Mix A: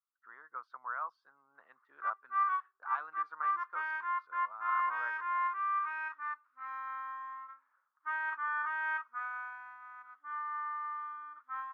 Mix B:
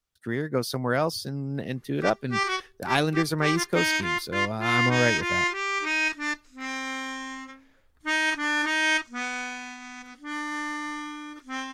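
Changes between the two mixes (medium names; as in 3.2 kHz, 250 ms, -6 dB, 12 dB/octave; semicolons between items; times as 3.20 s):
speech +4.5 dB; master: remove Butterworth band-pass 1.2 kHz, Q 2.8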